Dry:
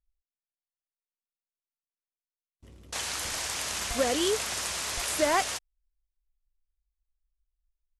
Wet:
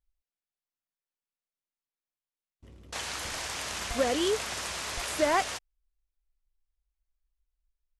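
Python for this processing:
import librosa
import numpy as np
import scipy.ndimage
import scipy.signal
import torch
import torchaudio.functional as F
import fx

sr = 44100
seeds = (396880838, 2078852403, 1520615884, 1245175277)

y = fx.high_shelf(x, sr, hz=5500.0, db=-8.0)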